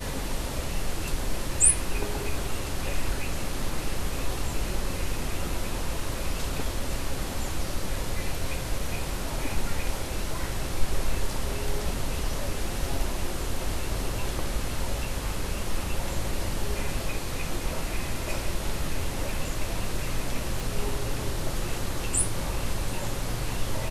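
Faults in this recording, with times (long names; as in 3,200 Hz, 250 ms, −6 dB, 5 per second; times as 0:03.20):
0:20.60: click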